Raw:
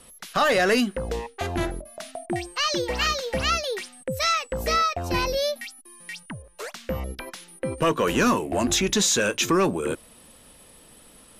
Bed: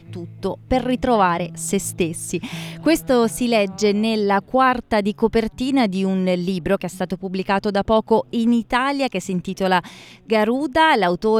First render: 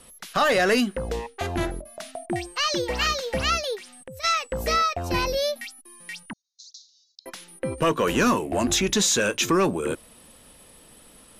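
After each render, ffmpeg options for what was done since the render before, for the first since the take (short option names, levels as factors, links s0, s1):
-filter_complex "[0:a]asplit=3[s0][s1][s2];[s0]afade=t=out:st=3.75:d=0.02[s3];[s1]acompressor=threshold=0.0112:ratio=4:attack=3.2:release=140:knee=1:detection=peak,afade=t=in:st=3.75:d=0.02,afade=t=out:st=4.23:d=0.02[s4];[s2]afade=t=in:st=4.23:d=0.02[s5];[s3][s4][s5]amix=inputs=3:normalize=0,asettb=1/sr,asplit=3[s6][s7][s8];[s6]atrim=end=6.334[s9];[s7]atrim=start=6.33:end=7.26,asetpts=PTS-STARTPTS,afade=t=in:d=0.004:c=qsin,afade=t=out:st=0.926:d=0.004:c=qsin,asuperpass=centerf=5100:order=12:qfactor=1.7[s10];[s8]atrim=start=7.256[s11];[s9][s10]acrossfade=d=0.004:c1=hsin:c2=qsin[s12];[s12][s11]acrossfade=d=0.004:c1=qsin:c2=hsin"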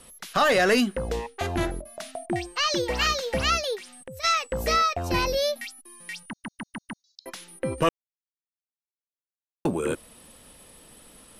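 -filter_complex "[0:a]asettb=1/sr,asplit=3[s0][s1][s2];[s0]atrim=end=2.304[s3];[s1]atrim=start=2.3:end=2.71,asetpts=PTS-STARTPTS,afade=t=in:d=0.004:c=qsin,afade=t=out:st=0.406:d=0.004:c=qsin,equalizer=f=11000:w=1.1:g=-6[s4];[s2]atrim=start=2.706[s5];[s3][s4]acrossfade=d=0.004:c1=hsin:c2=qsin[s6];[s6][s5]acrossfade=d=0.004:c1=qsin:c2=hsin,asplit=8[s7][s8][s9][s10][s11][s12][s13][s14];[s7]atrim=end=6.442[s15];[s8]atrim=start=6.288:end=6.442[s16];[s9]atrim=start=6.288:end=6.442[s17];[s10]atrim=start=6.288:end=6.442[s18];[s11]atrim=start=6.288:end=6.442[s19];[s12]atrim=start=7.038:end=7.89,asetpts=PTS-STARTPTS,afade=t=out:st=0.848:d=0.004:c=hsin[s20];[s13]atrim=start=7.89:end=9.65,asetpts=PTS-STARTPTS,volume=0[s21];[s14]atrim=start=9.65,asetpts=PTS-STARTPTS,afade=t=in:d=0.004:c=hsin[s22];[s15][s16]acrossfade=d=0.004:c1=hsin:c2=hsin[s23];[s23][s17]acrossfade=d=0.004:c1=hsin:c2=hsin[s24];[s24][s18]acrossfade=d=0.004:c1=hsin:c2=hsin[s25];[s25][s19]acrossfade=d=0.004:c1=hsin:c2=hsin[s26];[s20][s21][s22]concat=n=3:v=0:a=1[s27];[s26][s27]acrossfade=d=0.004:c1=hsin:c2=hsin"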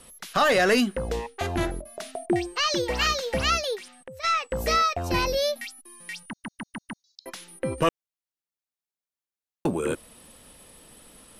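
-filter_complex "[0:a]asettb=1/sr,asplit=3[s0][s1][s2];[s0]atrim=end=1.964[s3];[s1]atrim=start=1.96:end=2.6,asetpts=PTS-STARTPTS,afade=t=in:d=0.004:c=qsin,afade=t=out:st=0.636:d=0.004:c=qsin,equalizer=f=400:w=3.9:g=12.5[s4];[s2]atrim=start=2.596[s5];[s3][s4]acrossfade=d=0.004:c1=hsin:c2=qsin[s6];[s6][s5]acrossfade=d=0.004:c1=qsin:c2=hsin,asettb=1/sr,asplit=3[s7][s8][s9];[s7]atrim=end=3.884[s10];[s8]atrim=start=3.88:end=4.51,asetpts=PTS-STARTPTS,afade=t=in:d=0.004:c=qsin,afade=t=out:st=0.626:d=0.004:c=qsin,asplit=2[s11][s12];[s12]highpass=f=720:p=1,volume=2,asoftclip=type=tanh:threshold=0.224[s13];[s11][s13]amix=inputs=2:normalize=0,lowpass=f=2200:p=1,volume=0.501[s14];[s9]atrim=start=4.506[s15];[s10][s14]acrossfade=d=0.004:c1=hsin:c2=qsin[s16];[s16][s15]acrossfade=d=0.004:c1=qsin:c2=hsin"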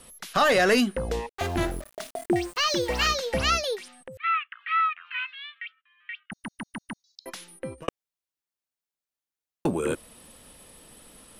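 -filter_complex "[0:a]asettb=1/sr,asplit=3[s0][s1][s2];[s0]atrim=end=1.294[s3];[s1]atrim=start=1.29:end=3.12,asetpts=PTS-STARTPTS,afade=t=in:d=0.004:c=qsin,afade=t=out:st=1.826:d=0.004:c=qsin,aeval=exprs='val(0)*gte(abs(val(0)),0.0112)':c=same[s4];[s2]atrim=start=3.116[s5];[s3][s4]acrossfade=d=0.004:c1=hsin:c2=qsin[s6];[s6][s5]acrossfade=d=0.004:c1=qsin:c2=hsin,asettb=1/sr,asplit=3[s7][s8][s9];[s7]atrim=end=4.174[s10];[s8]atrim=start=4.17:end=6.32,asetpts=PTS-STARTPTS,afade=t=in:d=0.004:c=qsin,afade=t=out:st=2.146:d=0.004:c=qsin,asuperpass=centerf=2000:order=12:qfactor=1[s11];[s9]atrim=start=6.316[s12];[s10][s11]acrossfade=d=0.004:c1=hsin:c2=qsin[s13];[s13][s12]acrossfade=d=0.004:c1=qsin:c2=hsin,asplit=2[s14][s15];[s14]atrim=end=7.88,asetpts=PTS-STARTPTS,afade=t=out:st=7.41:d=0.47[s16];[s15]atrim=start=7.88,asetpts=PTS-STARTPTS,afade=t=in:d=0.004:c=hsin[s17];[s16][s17]concat=n=2:v=0:a=1"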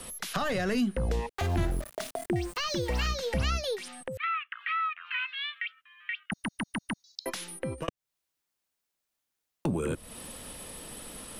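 -filter_complex "[0:a]acrossover=split=190[s0][s1];[s1]acompressor=threshold=0.0141:ratio=4[s2];[s0][s2]amix=inputs=2:normalize=0,asplit=2[s3][s4];[s4]alimiter=level_in=2.24:limit=0.0631:level=0:latency=1:release=157,volume=0.447,volume=1.33[s5];[s3][s5]amix=inputs=2:normalize=0"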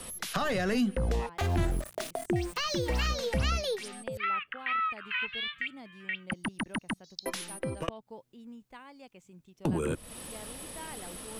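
-filter_complex "[1:a]volume=0.0299[s0];[0:a][s0]amix=inputs=2:normalize=0"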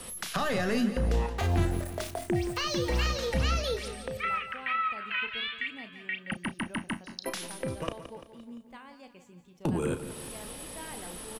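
-filter_complex "[0:a]asplit=2[s0][s1];[s1]adelay=34,volume=0.316[s2];[s0][s2]amix=inputs=2:normalize=0,asplit=2[s3][s4];[s4]aecho=0:1:172|344|516|688|860|1032:0.251|0.133|0.0706|0.0374|0.0198|0.0105[s5];[s3][s5]amix=inputs=2:normalize=0"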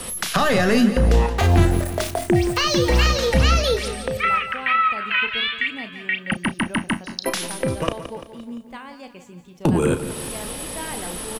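-af "volume=3.55"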